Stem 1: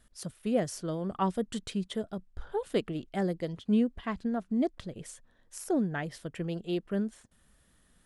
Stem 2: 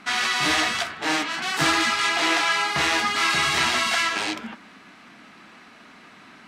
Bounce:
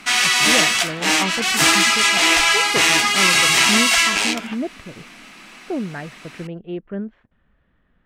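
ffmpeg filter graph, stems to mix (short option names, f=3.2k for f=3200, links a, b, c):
-filter_complex "[0:a]lowpass=f=2.6k:w=0.5412,lowpass=f=2.6k:w=1.3066,volume=3dB[a];[1:a]highpass=110,aexciter=amount=1.7:drive=7.1:freq=2.2k,volume=3dB[b];[a][b]amix=inputs=2:normalize=0"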